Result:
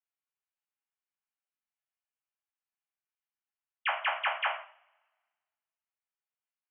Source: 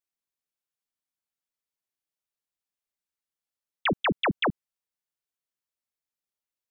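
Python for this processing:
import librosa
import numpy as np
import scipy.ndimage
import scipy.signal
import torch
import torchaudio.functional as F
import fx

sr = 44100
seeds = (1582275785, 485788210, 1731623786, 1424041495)

y = scipy.signal.sosfilt(scipy.signal.cheby1(5, 1.0, [630.0, 3000.0], 'bandpass', fs=sr, output='sos'), x)
y = fx.rev_double_slope(y, sr, seeds[0], early_s=0.43, late_s=1.5, knee_db=-28, drr_db=-3.5)
y = y * librosa.db_to_amplitude(-6.5)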